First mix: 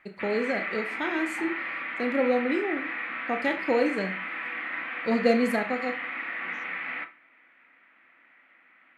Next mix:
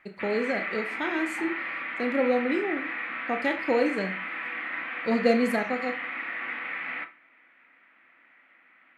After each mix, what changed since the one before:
second voice: entry -0.95 s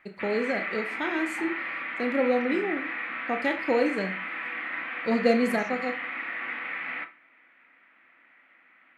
second voice +11.0 dB

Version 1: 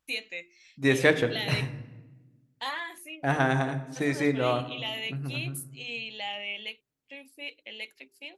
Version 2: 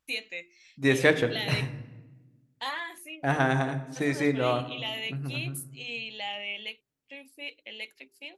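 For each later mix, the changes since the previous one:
none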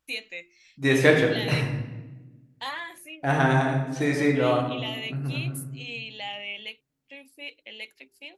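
second voice: send +10.0 dB

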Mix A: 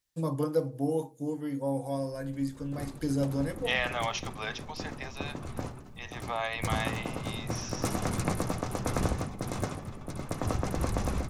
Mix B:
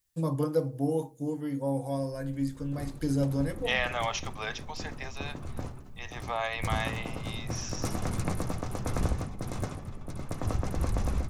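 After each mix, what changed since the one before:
second voice: remove Chebyshev low-pass 5300 Hz; background -3.5 dB; master: add low shelf 87 Hz +10 dB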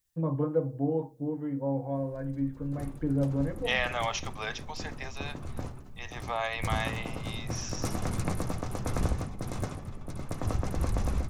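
first voice: add Gaussian blur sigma 4.3 samples

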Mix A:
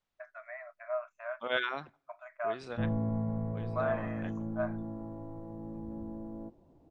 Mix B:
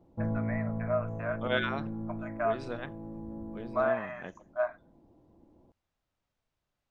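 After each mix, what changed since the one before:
first voice +4.5 dB; second voice: add low shelf 490 Hz +7 dB; background: entry -2.60 s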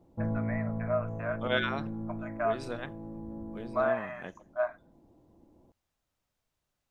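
second voice: remove air absorption 94 m

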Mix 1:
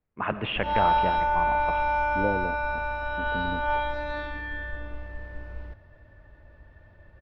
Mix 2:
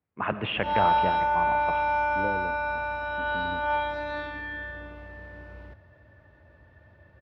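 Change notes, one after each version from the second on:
second voice -5.5 dB; master: add HPF 71 Hz 24 dB/oct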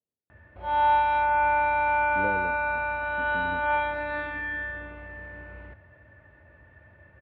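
first voice: muted; background: add synth low-pass 2300 Hz, resonance Q 1.8; reverb: off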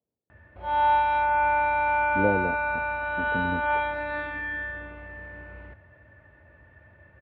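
speech +9.0 dB

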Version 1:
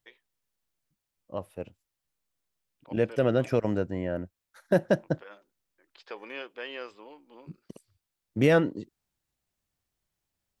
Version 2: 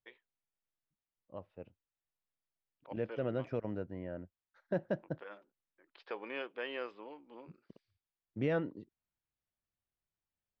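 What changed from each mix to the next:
second voice -11.0 dB; master: add air absorption 240 m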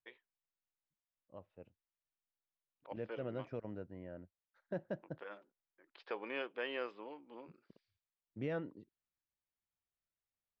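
second voice -6.5 dB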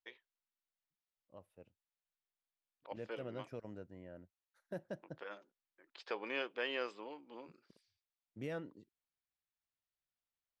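second voice -4.0 dB; master: remove air absorption 240 m

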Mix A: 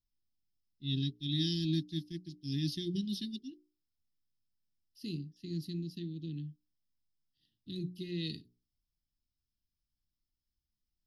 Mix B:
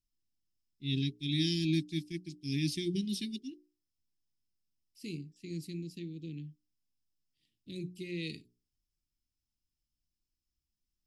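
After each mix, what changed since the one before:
second voice -3.5 dB; master: remove fixed phaser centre 2300 Hz, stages 6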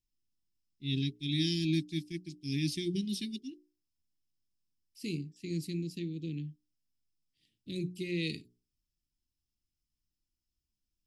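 second voice +4.5 dB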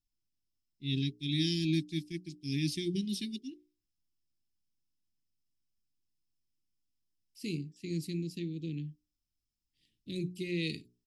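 second voice: entry +2.40 s

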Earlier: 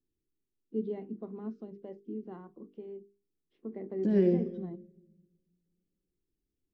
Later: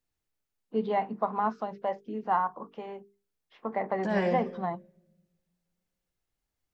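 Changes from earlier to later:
first voice +8.0 dB; master: remove EQ curve 120 Hz 0 dB, 370 Hz +10 dB, 570 Hz -10 dB, 890 Hz -22 dB, 3100 Hz -11 dB

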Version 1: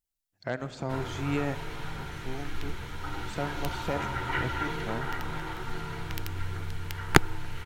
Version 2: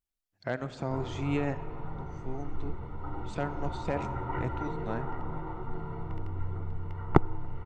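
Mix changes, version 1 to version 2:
background: add polynomial smoothing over 65 samples; master: add high shelf 4600 Hz -7.5 dB

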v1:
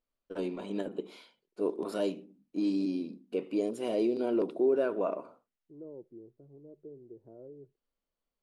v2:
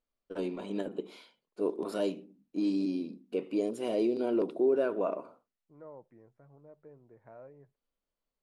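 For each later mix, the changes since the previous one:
second voice: remove synth low-pass 370 Hz, resonance Q 4.3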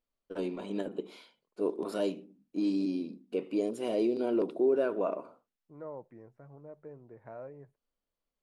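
second voice +6.0 dB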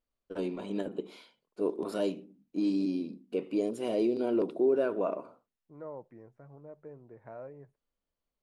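first voice: add bell 76 Hz +5.5 dB 1.9 oct

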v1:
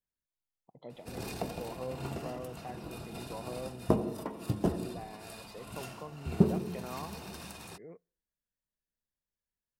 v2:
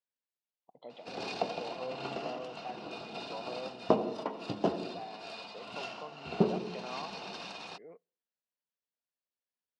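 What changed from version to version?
first sound +4.0 dB; master: add speaker cabinet 300–5300 Hz, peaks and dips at 350 Hz -4 dB, 730 Hz +3 dB, 1800 Hz -4 dB, 2900 Hz +4 dB, 4300 Hz +3 dB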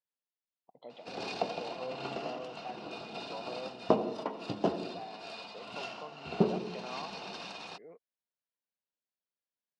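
reverb: off

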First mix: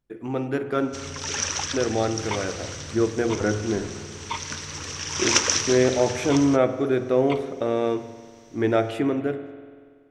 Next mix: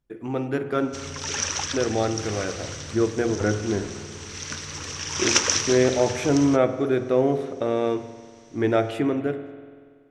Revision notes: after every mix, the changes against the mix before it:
speech: remove notches 50/100/150 Hz; second sound: muted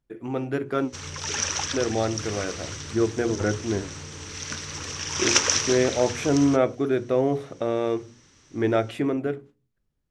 reverb: off

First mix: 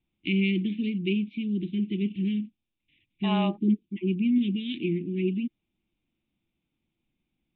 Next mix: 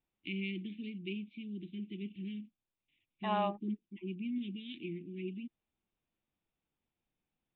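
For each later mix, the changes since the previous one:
first voice -10.5 dB; master: add low shelf 480 Hz -4.5 dB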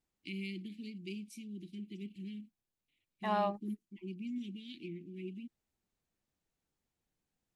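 first voice -5.5 dB; master: remove rippled Chebyshev low-pass 3700 Hz, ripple 3 dB

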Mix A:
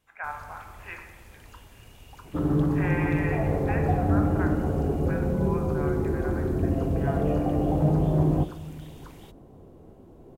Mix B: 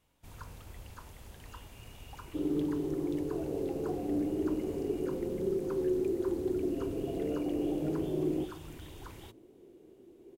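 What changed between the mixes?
speech: muted; second sound: add band-pass 360 Hz, Q 4

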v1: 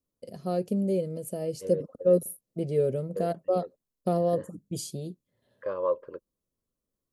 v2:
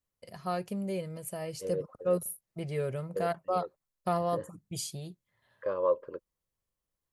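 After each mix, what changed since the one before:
first voice: add graphic EQ 250/500/1000/2000 Hz -10/-9/+10/+8 dB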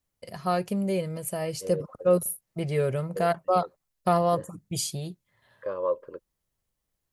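first voice +7.0 dB

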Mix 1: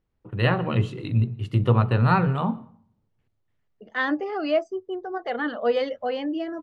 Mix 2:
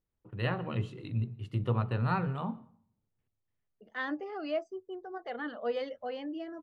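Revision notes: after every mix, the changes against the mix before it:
first voice -10.5 dB; second voice -10.5 dB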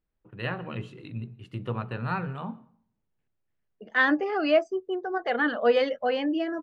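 second voice +11.5 dB; master: add thirty-one-band EQ 100 Hz -9 dB, 1600 Hz +5 dB, 2500 Hz +4 dB

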